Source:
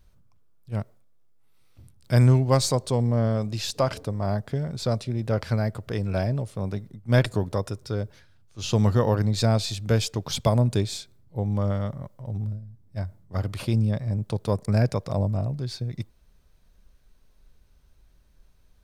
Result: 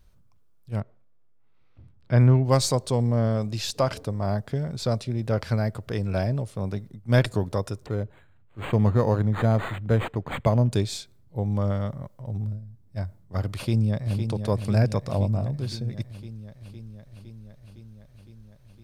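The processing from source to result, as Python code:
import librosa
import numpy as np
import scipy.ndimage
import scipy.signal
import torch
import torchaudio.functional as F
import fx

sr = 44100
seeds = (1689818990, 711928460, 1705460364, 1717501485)

y = fx.lowpass(x, sr, hz=2500.0, slope=12, at=(0.8, 2.45))
y = fx.resample_linear(y, sr, factor=8, at=(7.86, 10.72))
y = fx.echo_throw(y, sr, start_s=13.54, length_s=0.74, ms=510, feedback_pct=75, wet_db=-7.5)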